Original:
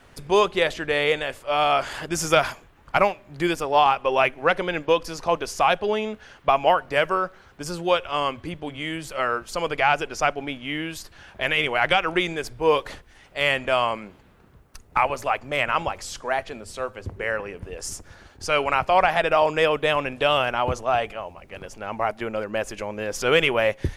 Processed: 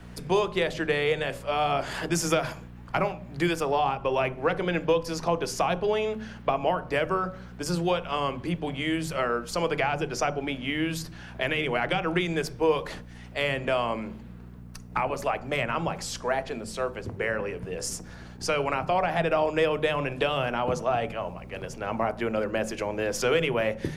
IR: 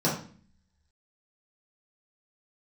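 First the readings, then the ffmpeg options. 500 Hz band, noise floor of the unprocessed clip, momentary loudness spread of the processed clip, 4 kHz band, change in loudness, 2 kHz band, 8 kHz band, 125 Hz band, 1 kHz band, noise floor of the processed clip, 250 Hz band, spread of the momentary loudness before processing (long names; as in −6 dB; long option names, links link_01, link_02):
−3.0 dB, −53 dBFS, 9 LU, −6.0 dB, −4.5 dB, −6.0 dB, −1.0 dB, +2.0 dB, −6.0 dB, −44 dBFS, +1.0 dB, 14 LU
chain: -filter_complex "[0:a]aeval=exprs='val(0)+0.00562*(sin(2*PI*60*n/s)+sin(2*PI*2*60*n/s)/2+sin(2*PI*3*60*n/s)/3+sin(2*PI*4*60*n/s)/4+sin(2*PI*5*60*n/s)/5)':channel_layout=same,acrossover=split=120|460[link_01][link_02][link_03];[link_01]acompressor=threshold=-42dB:ratio=4[link_04];[link_02]acompressor=threshold=-31dB:ratio=4[link_05];[link_03]acompressor=threshold=-27dB:ratio=4[link_06];[link_04][link_05][link_06]amix=inputs=3:normalize=0,asplit=2[link_07][link_08];[1:a]atrim=start_sample=2205,lowshelf=frequency=430:gain=5[link_09];[link_08][link_09]afir=irnorm=-1:irlink=0,volume=-24.5dB[link_10];[link_07][link_10]amix=inputs=2:normalize=0"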